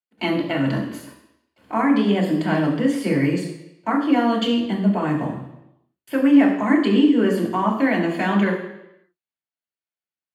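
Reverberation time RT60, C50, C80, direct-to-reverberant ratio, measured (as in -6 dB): 0.85 s, 6.5 dB, 8.5 dB, -3.5 dB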